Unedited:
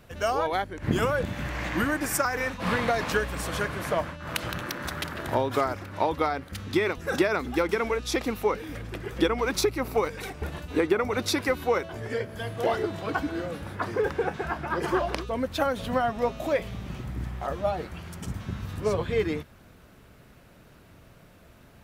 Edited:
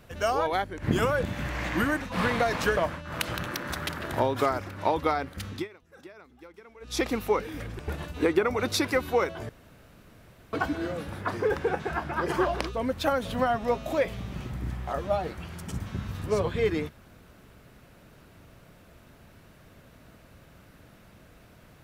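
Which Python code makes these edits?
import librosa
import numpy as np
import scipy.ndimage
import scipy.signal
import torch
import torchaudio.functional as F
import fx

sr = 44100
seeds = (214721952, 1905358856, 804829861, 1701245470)

y = fx.edit(x, sr, fx.cut(start_s=2.01, length_s=0.48),
    fx.cut(start_s=3.25, length_s=0.67),
    fx.fade_down_up(start_s=6.64, length_s=1.5, db=-24.0, fade_s=0.19),
    fx.cut(start_s=8.94, length_s=1.39),
    fx.room_tone_fill(start_s=12.03, length_s=1.04), tone=tone)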